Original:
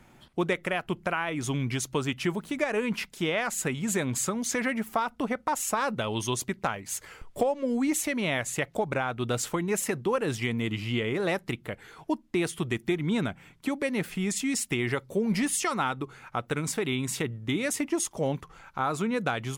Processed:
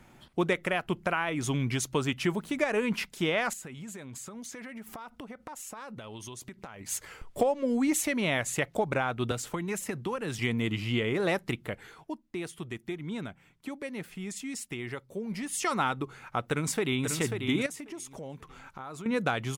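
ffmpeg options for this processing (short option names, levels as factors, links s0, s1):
-filter_complex "[0:a]asettb=1/sr,asplit=3[s0][s1][s2];[s0]atrim=end=3.534[s3];[s1]atrim=start=3.53:end=6.81,asetpts=PTS-STARTPTS,afade=t=in:d=0.004:c=qsin,afade=t=out:st=3.276:d=0.004:c=qsin,acompressor=threshold=0.0112:ratio=10:attack=3.2:release=140:knee=1:detection=peak[s4];[s2]atrim=start=6.806[s5];[s3][s4]acrossfade=d=0.004:c1=hsin:c2=qsin[s6];[s6][s5]acrossfade=d=0.004:c1=qsin:c2=hsin,asettb=1/sr,asplit=3[s7][s8][s9];[s7]atrim=end=9.314[s10];[s8]atrim=start=9.31:end=10.39,asetpts=PTS-STARTPTS,afade=t=in:d=0.004:c=qsin,afade=t=out:st=1.076:d=0.004:c=qsin,acrossover=split=240|840[s11][s12][s13];[s11]acompressor=threshold=0.0158:ratio=4[s14];[s12]acompressor=threshold=0.0141:ratio=4[s15];[s13]acompressor=threshold=0.0158:ratio=4[s16];[s14][s15][s16]amix=inputs=3:normalize=0[s17];[s9]atrim=start=10.386[s18];[s10][s17]acrossfade=d=0.004:c1=hsin:c2=qsin[s19];[s19][s18]acrossfade=d=0.004:c1=qsin:c2=hsin,asplit=2[s20][s21];[s21]afade=t=in:st=16.41:d=0.01,afade=t=out:st=17.08:d=0.01,aecho=0:1:540|1080|1620:0.501187|0.125297|0.0313242[s22];[s20][s22]amix=inputs=2:normalize=0,asettb=1/sr,asplit=3[s23][s24][s25];[s23]atrim=end=17.664[s26];[s24]atrim=start=17.66:end=19.06,asetpts=PTS-STARTPTS,afade=t=in:d=0.004:c=qsin,afade=t=out:st=1.396:d=0.004:c=qsin,acompressor=threshold=0.00794:ratio=3:attack=3.2:release=140:knee=1:detection=peak[s27];[s25]atrim=start=19.056[s28];[s26][s27]acrossfade=d=0.004:c1=hsin:c2=qsin[s29];[s29][s28]acrossfade=d=0.004:c1=qsin:c2=hsin,asplit=3[s30][s31][s32];[s30]atrim=end=12.07,asetpts=PTS-STARTPTS,afade=t=out:st=11.86:d=0.21:silence=0.354813[s33];[s31]atrim=start=12.07:end=15.49,asetpts=PTS-STARTPTS,volume=0.355[s34];[s32]atrim=start=15.49,asetpts=PTS-STARTPTS,afade=t=in:d=0.21:silence=0.354813[s35];[s33][s34][s35]concat=n=3:v=0:a=1"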